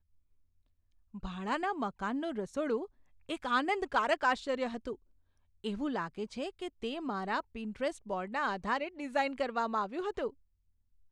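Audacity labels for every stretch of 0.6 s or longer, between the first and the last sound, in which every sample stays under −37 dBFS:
4.930000	5.650000	silence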